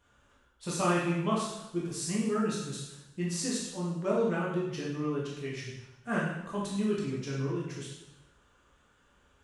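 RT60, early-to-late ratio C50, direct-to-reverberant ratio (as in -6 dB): 0.95 s, 1.5 dB, -5.5 dB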